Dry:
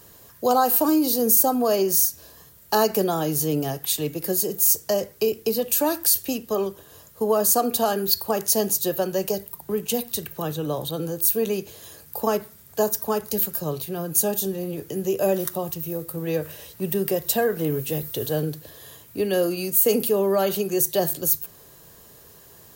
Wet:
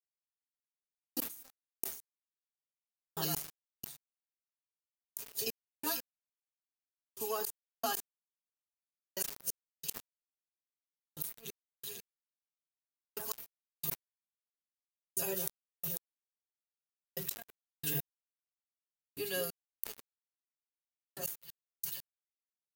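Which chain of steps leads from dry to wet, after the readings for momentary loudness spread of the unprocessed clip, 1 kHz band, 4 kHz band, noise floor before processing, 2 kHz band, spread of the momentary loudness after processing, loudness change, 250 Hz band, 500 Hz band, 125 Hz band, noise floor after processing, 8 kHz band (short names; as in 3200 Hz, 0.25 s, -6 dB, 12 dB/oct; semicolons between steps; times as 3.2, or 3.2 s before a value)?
11 LU, -21.5 dB, -15.0 dB, -50 dBFS, -13.5 dB, 14 LU, -17.0 dB, -25.5 dB, -24.5 dB, -20.0 dB, under -85 dBFS, -18.0 dB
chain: HPF 44 Hz 24 dB/oct; passive tone stack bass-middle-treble 5-5-5; notch 590 Hz, Q 12; comb 7.3 ms, depth 92%; on a send: split-band echo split 2100 Hz, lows 0.194 s, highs 0.494 s, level -6 dB; on the sum: step gate ".......xx..x" 90 bpm -60 dB; flipped gate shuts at -21 dBFS, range -30 dB; crossover distortion -56.5 dBFS; sustainer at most 110 dB/s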